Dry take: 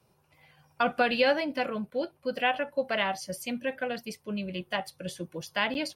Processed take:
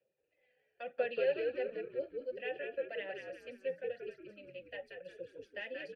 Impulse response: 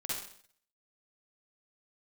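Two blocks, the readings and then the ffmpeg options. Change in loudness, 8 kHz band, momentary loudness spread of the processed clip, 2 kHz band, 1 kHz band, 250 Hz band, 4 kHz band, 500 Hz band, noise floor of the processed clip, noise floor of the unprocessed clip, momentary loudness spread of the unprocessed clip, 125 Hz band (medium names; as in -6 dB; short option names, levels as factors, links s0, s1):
-9.5 dB, under -30 dB, 16 LU, -13.5 dB, -20.5 dB, -19.0 dB, -18.5 dB, -6.0 dB, -80 dBFS, -68 dBFS, 11 LU, under -20 dB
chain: -filter_complex "[0:a]aphaser=in_gain=1:out_gain=1:delay=4.1:decay=0.43:speed=0.96:type=sinusoidal,asplit=3[s0][s1][s2];[s0]bandpass=f=530:t=q:w=8,volume=1[s3];[s1]bandpass=f=1840:t=q:w=8,volume=0.501[s4];[s2]bandpass=f=2480:t=q:w=8,volume=0.355[s5];[s3][s4][s5]amix=inputs=3:normalize=0,asplit=6[s6][s7][s8][s9][s10][s11];[s7]adelay=181,afreqshift=-67,volume=0.596[s12];[s8]adelay=362,afreqshift=-134,volume=0.221[s13];[s9]adelay=543,afreqshift=-201,volume=0.0813[s14];[s10]adelay=724,afreqshift=-268,volume=0.0302[s15];[s11]adelay=905,afreqshift=-335,volume=0.0112[s16];[s6][s12][s13][s14][s15][s16]amix=inputs=6:normalize=0,volume=0.531"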